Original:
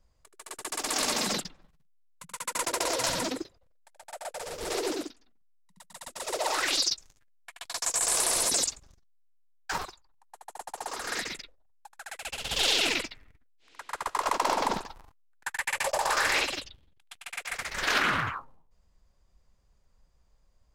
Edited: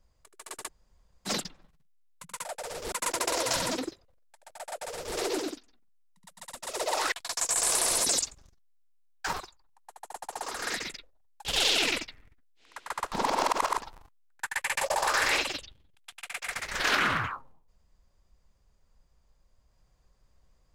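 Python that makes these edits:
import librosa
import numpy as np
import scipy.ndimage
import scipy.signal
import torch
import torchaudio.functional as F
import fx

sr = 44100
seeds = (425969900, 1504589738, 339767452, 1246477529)

y = fx.edit(x, sr, fx.room_tone_fill(start_s=0.67, length_s=0.6, crossfade_s=0.04),
    fx.duplicate(start_s=4.21, length_s=0.47, to_s=2.45),
    fx.cut(start_s=6.65, length_s=0.92),
    fx.cut(start_s=11.9, length_s=0.58),
    fx.reverse_span(start_s=14.15, length_s=0.65), tone=tone)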